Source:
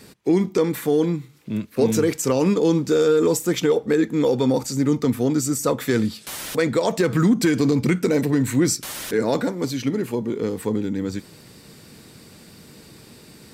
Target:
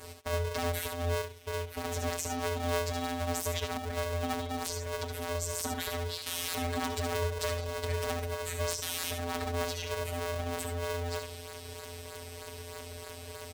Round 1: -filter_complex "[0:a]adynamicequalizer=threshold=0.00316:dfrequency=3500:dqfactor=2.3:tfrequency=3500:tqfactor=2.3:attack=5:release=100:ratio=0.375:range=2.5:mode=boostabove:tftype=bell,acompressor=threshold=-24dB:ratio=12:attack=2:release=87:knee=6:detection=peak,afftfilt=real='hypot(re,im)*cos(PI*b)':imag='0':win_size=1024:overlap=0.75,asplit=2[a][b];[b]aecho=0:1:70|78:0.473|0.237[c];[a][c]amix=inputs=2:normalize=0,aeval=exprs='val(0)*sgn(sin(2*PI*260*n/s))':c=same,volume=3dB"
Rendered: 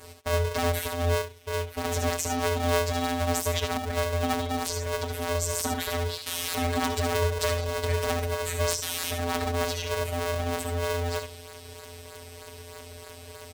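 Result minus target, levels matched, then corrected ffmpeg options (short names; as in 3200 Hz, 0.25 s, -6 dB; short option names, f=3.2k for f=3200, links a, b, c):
compressor: peak gain reduction -6.5 dB
-filter_complex "[0:a]adynamicequalizer=threshold=0.00316:dfrequency=3500:dqfactor=2.3:tfrequency=3500:tqfactor=2.3:attack=5:release=100:ratio=0.375:range=2.5:mode=boostabove:tftype=bell,acompressor=threshold=-31dB:ratio=12:attack=2:release=87:knee=6:detection=peak,afftfilt=real='hypot(re,im)*cos(PI*b)':imag='0':win_size=1024:overlap=0.75,asplit=2[a][b];[b]aecho=0:1:70|78:0.473|0.237[c];[a][c]amix=inputs=2:normalize=0,aeval=exprs='val(0)*sgn(sin(2*PI*260*n/s))':c=same,volume=3dB"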